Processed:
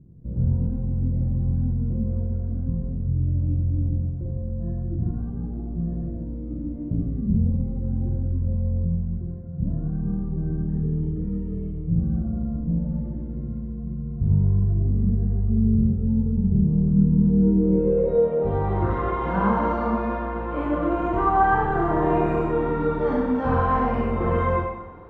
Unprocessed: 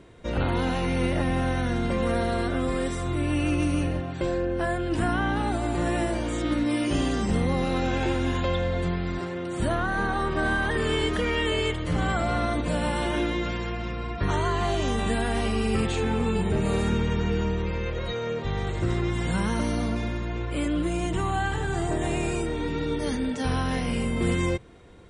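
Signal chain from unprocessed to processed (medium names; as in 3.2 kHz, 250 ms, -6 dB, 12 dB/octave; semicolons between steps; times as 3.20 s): Schroeder reverb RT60 0.98 s, combs from 32 ms, DRR -3 dB; low-pass sweep 150 Hz -> 1.1 kHz, 16.93–18.91 s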